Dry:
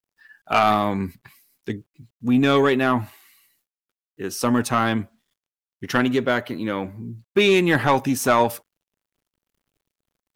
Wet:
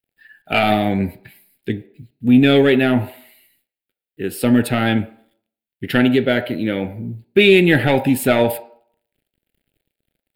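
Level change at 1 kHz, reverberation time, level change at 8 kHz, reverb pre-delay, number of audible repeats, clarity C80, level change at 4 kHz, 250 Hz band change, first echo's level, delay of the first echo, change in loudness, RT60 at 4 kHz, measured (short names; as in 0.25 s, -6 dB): -2.5 dB, 0.55 s, -1.5 dB, 9 ms, none, 15.5 dB, +5.0 dB, +6.0 dB, none, none, +4.0 dB, 0.40 s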